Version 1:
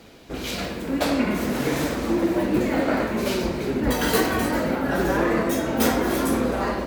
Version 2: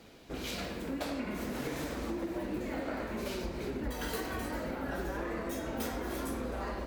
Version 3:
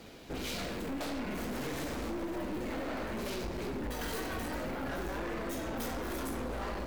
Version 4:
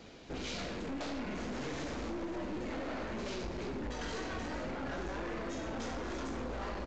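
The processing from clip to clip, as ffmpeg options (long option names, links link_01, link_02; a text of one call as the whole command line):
ffmpeg -i in.wav -af "asubboost=boost=3:cutoff=78,acompressor=threshold=-26dB:ratio=5,volume=-7.5dB" out.wav
ffmpeg -i in.wav -filter_complex "[0:a]aeval=exprs='(tanh(100*val(0)+0.4)-tanh(0.4))/100':channel_layout=same,asplit=2[link_01][link_02];[link_02]acrusher=bits=4:mode=log:mix=0:aa=0.000001,volume=-4dB[link_03];[link_01][link_03]amix=inputs=2:normalize=0,volume=1.5dB" out.wav
ffmpeg -i in.wav -af "aresample=16000,aresample=44100,volume=-2dB" out.wav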